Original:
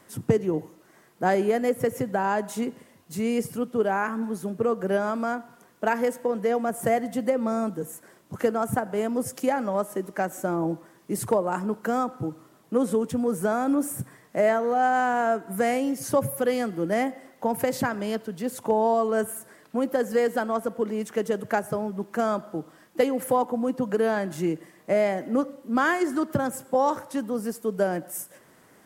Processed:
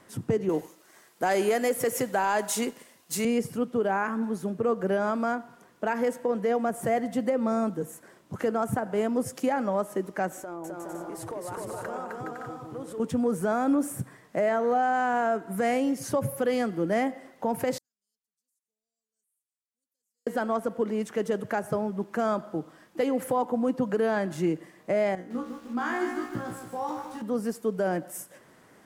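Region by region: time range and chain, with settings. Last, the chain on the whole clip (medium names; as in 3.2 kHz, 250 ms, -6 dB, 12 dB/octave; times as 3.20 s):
0.49–3.25 s: high-pass 440 Hz 6 dB/octave + treble shelf 4 kHz +12 dB + waveshaping leveller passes 1
10.38–13.00 s: compression 4:1, threshold -34 dBFS + peaking EQ 200 Hz -13 dB 0.66 oct + bouncing-ball echo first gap 260 ms, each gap 0.6×, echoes 5, each echo -2 dB
17.78–20.27 s: inverse Chebyshev high-pass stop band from 2.5 kHz, stop band 70 dB + compression 3:1, threshold -47 dBFS + distance through air 210 m
25.15–27.22 s: band-stop 580 Hz, Q 5.1 + feedback comb 60 Hz, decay 0.32 s, mix 100% + bit-crushed delay 152 ms, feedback 55%, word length 8-bit, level -6 dB
whole clip: treble shelf 10 kHz -9.5 dB; peak limiter -17 dBFS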